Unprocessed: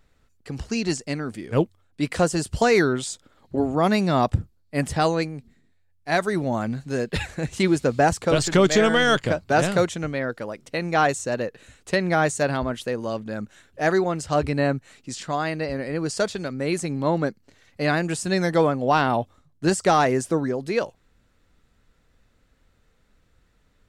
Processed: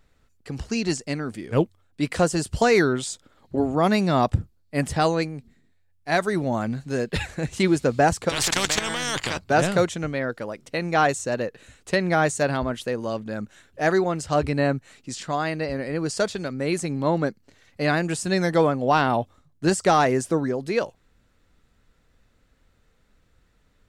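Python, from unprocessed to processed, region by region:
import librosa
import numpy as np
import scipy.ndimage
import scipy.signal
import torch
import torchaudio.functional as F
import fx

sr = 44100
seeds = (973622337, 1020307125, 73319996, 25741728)

y = fx.chain(x, sr, fx.level_steps(step_db=15),
    fx.peak_eq(hz=110.0, db=6.5, octaves=2.0),
    fx.spectral_comp(ratio=4.0), at=(8.29, 9.39))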